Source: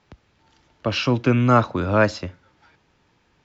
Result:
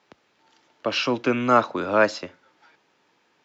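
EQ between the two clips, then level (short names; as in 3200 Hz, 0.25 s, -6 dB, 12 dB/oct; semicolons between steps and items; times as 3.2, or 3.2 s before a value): HPF 300 Hz 12 dB/oct; 0.0 dB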